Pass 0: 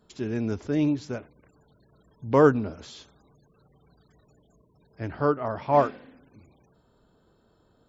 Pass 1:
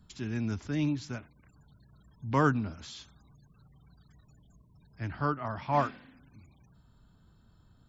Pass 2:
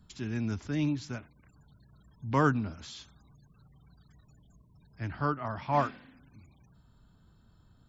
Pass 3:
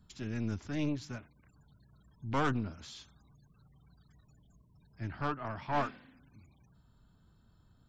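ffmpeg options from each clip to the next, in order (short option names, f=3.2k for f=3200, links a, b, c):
-filter_complex "[0:a]equalizer=f=470:w=1.1:g=-14,acrossover=split=190|660[a][b][c];[a]acompressor=mode=upward:threshold=-52dB:ratio=2.5[d];[d][b][c]amix=inputs=3:normalize=0"
-af anull
-af "aeval=exprs='(tanh(15.8*val(0)+0.65)-tanh(0.65))/15.8':c=same"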